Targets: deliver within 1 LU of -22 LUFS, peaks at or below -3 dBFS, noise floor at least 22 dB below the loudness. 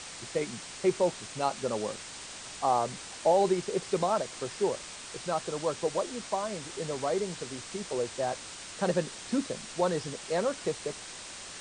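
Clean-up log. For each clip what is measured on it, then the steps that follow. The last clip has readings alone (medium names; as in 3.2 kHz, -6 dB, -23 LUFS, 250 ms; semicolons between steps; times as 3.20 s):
noise floor -44 dBFS; noise floor target -54 dBFS; loudness -32.0 LUFS; peak level -14.0 dBFS; loudness target -22.0 LUFS
-> noise reduction 10 dB, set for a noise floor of -44 dBFS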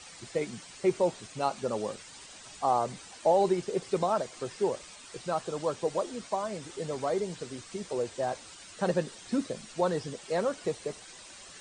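noise floor -49 dBFS; noise floor target -54 dBFS
-> noise reduction 6 dB, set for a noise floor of -49 dBFS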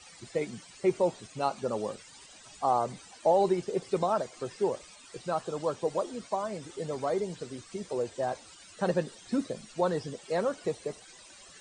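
noise floor -53 dBFS; noise floor target -54 dBFS
-> noise reduction 6 dB, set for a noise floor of -53 dBFS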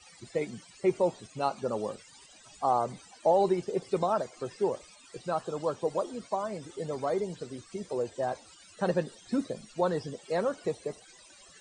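noise floor -56 dBFS; loudness -32.0 LUFS; peak level -14.5 dBFS; loudness target -22.0 LUFS
-> trim +10 dB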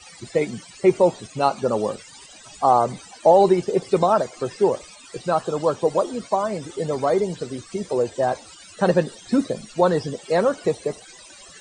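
loudness -22.0 LUFS; peak level -4.5 dBFS; noise floor -46 dBFS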